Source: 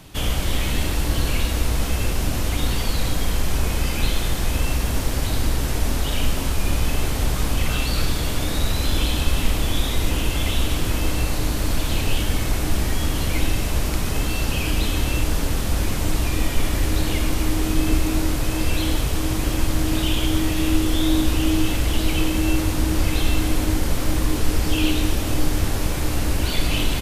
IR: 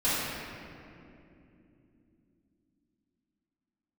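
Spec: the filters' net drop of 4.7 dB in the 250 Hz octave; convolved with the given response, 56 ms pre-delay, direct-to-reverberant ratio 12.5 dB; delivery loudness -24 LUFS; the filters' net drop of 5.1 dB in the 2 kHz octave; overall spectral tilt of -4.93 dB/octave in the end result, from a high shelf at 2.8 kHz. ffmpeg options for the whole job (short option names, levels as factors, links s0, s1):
-filter_complex "[0:a]equalizer=f=250:t=o:g=-6.5,equalizer=f=2000:t=o:g=-4.5,highshelf=f=2800:g=-4.5,asplit=2[s0][s1];[1:a]atrim=start_sample=2205,adelay=56[s2];[s1][s2]afir=irnorm=-1:irlink=0,volume=0.0531[s3];[s0][s3]amix=inputs=2:normalize=0,volume=1.06"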